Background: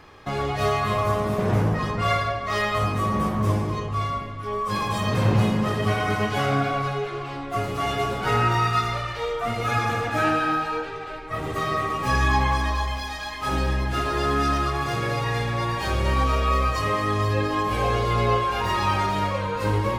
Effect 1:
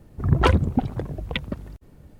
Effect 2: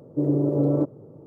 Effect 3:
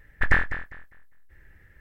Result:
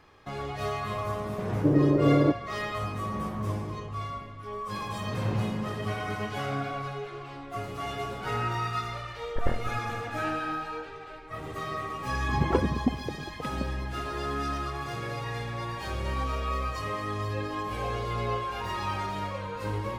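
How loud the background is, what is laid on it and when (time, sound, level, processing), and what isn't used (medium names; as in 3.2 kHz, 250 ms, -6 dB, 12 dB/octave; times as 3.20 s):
background -9 dB
1.47 s: add 2
9.15 s: add 3 -4.5 dB + resonant low-pass 530 Hz, resonance Q 2.8
12.09 s: add 1 -2 dB + band-pass filter 320 Hz, Q 0.97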